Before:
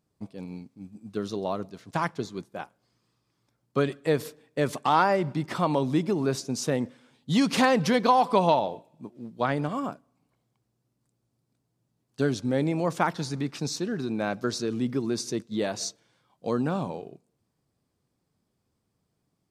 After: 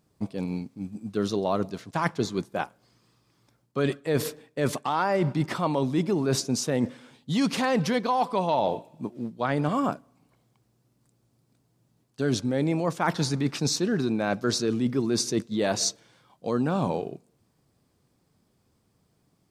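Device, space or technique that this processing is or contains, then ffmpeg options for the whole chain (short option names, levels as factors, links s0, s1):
compression on the reversed sound: -af "areverse,acompressor=threshold=0.0355:ratio=10,areverse,volume=2.51"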